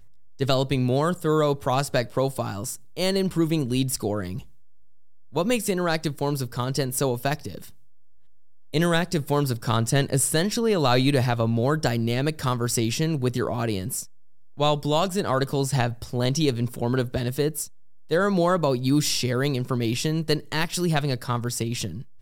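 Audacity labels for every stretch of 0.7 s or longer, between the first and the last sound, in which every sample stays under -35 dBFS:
4.430000	5.330000	silence
7.700000	8.730000	silence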